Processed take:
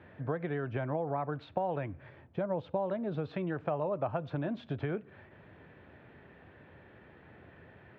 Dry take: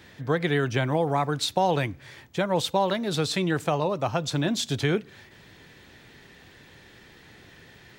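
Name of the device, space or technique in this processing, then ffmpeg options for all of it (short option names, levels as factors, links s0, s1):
bass amplifier: -filter_complex "[0:a]asettb=1/sr,asplit=3[s0][s1][s2];[s0]atrim=end=2.094[s3];[s1]atrim=start=2.09:end=3.25,asetpts=PTS-STARTPTS,afade=t=in:d=0.004:c=qsin,afade=t=out:st=1.156:d=0.004:c=qsin,equalizer=f=1800:w=0.44:g=-5.5[s4];[s2]atrim=start=3.246[s5];[s3][s4]acrossfade=d=0.004:c1=hsin:c2=qsin[s6];[s6][s5]acrossfade=d=0.004:c1=qsin:c2=hsin,acompressor=threshold=0.0355:ratio=4,highpass=65,equalizer=f=83:t=q:w=4:g=5,equalizer=f=610:t=q:w=4:g=6,equalizer=f=2000:t=q:w=4:g=-6,lowpass=f=2200:w=0.5412,lowpass=f=2200:w=1.3066,volume=0.708"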